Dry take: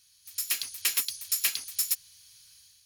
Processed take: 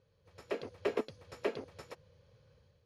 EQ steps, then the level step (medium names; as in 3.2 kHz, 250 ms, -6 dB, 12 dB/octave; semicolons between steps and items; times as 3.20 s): high-pass 120 Hz 6 dB/octave; resonant low-pass 490 Hz, resonance Q 3.6; +15.5 dB